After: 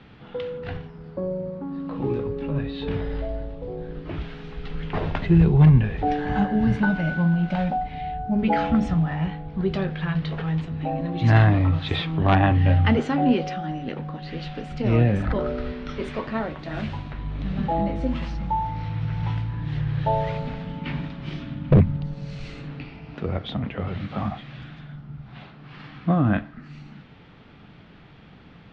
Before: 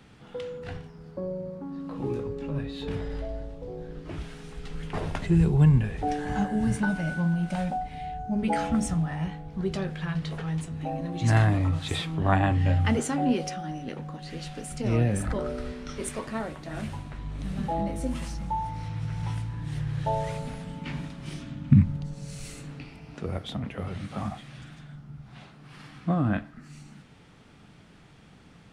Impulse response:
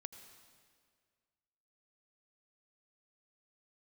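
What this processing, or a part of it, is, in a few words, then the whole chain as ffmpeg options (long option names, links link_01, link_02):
synthesiser wavefolder: -filter_complex "[0:a]asettb=1/sr,asplit=3[link_01][link_02][link_03];[link_01]atrim=end=16.594[link_04];[link_02]atrim=start=16.59:end=17.13,asetpts=PTS-STARTPTS,afade=type=in:duration=0.004:curve=qsin,afade=type=out:start_time=0.536:duration=0.004:curve=qsin,aemphasis=mode=production:type=cd[link_05];[link_03]atrim=start=17.126[link_06];[link_04][link_05]acrossfade=duration=0.004:curve1=hsin:curve2=qsin[link_07];[link_07][link_06]acrossfade=duration=0.004:curve1=qsin:curve2=hsin,aeval=exprs='0.237*(abs(mod(val(0)/0.237+3,4)-2)-1)':channel_layout=same,lowpass=frequency=4000:width=0.5412,lowpass=frequency=4000:width=1.3066,volume=5dB"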